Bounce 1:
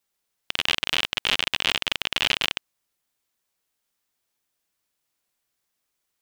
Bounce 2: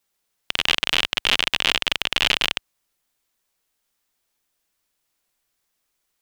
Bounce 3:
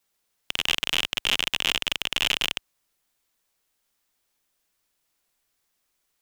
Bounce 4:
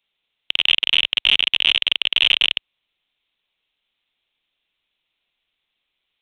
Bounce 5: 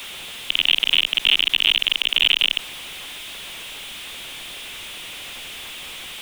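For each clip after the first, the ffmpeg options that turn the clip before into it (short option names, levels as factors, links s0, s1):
-af "asubboost=boost=2:cutoff=58,volume=1.5"
-filter_complex "[0:a]acrossover=split=460[s0][s1];[s0]alimiter=level_in=2.37:limit=0.0631:level=0:latency=1,volume=0.422[s2];[s2][s1]amix=inputs=2:normalize=0,asoftclip=type=tanh:threshold=0.316"
-af "aresample=8000,acrusher=bits=4:mode=log:mix=0:aa=0.000001,aresample=44100,aexciter=amount=5.3:drive=3.2:freq=2300,volume=0.75"
-filter_complex "[0:a]aeval=exprs='val(0)+0.5*0.0398*sgn(val(0))':c=same,acrossover=split=140|630|1900[s0][s1][s2][s3];[s0]alimiter=level_in=5.96:limit=0.0631:level=0:latency=1,volume=0.168[s4];[s4][s1][s2][s3]amix=inputs=4:normalize=0,volume=0.891"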